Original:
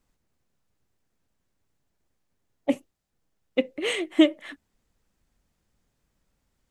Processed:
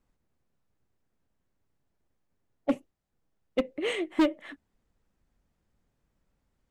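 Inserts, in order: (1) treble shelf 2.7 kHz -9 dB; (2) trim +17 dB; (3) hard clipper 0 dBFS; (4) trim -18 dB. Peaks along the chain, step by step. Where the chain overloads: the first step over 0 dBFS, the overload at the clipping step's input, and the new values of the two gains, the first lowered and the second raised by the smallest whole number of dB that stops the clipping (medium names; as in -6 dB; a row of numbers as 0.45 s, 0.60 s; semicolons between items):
-7.5 dBFS, +9.5 dBFS, 0.0 dBFS, -18.0 dBFS; step 2, 9.5 dB; step 2 +7 dB, step 4 -8 dB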